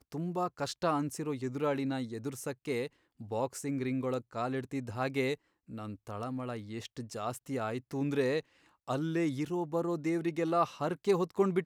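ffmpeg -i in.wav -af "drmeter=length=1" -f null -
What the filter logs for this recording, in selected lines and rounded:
Channel 1: DR: 11.0
Overall DR: 11.0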